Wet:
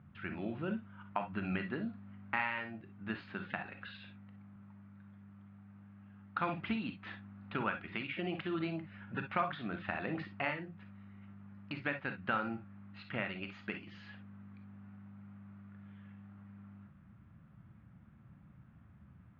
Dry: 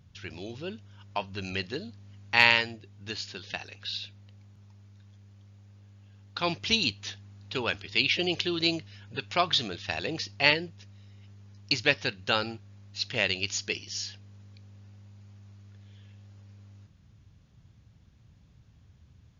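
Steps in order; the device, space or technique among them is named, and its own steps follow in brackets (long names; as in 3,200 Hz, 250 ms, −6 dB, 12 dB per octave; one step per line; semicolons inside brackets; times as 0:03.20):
bass amplifier (downward compressor 4 to 1, threshold −33 dBFS, peak gain reduction 16 dB; loudspeaker in its box 88–2,100 Hz, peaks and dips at 100 Hz −6 dB, 210 Hz +6 dB, 450 Hz −9 dB, 1,300 Hz +7 dB)
notch filter 5,600 Hz, Q 6.1
reverb whose tail is shaped and stops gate 80 ms rising, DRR 6.5 dB
level +1 dB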